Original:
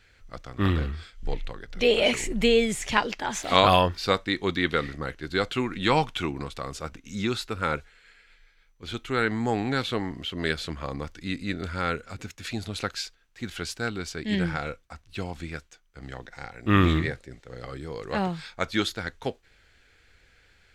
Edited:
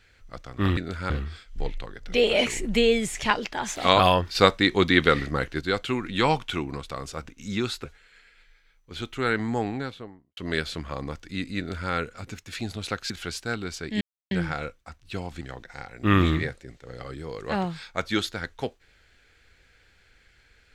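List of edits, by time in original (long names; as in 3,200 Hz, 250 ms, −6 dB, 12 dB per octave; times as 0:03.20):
0:04.02–0:05.28: clip gain +6 dB
0:07.51–0:07.76: remove
0:09.32–0:10.29: fade out and dull
0:11.50–0:11.83: duplicate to 0:00.77
0:13.02–0:13.44: remove
0:14.35: splice in silence 0.30 s
0:15.45–0:16.04: remove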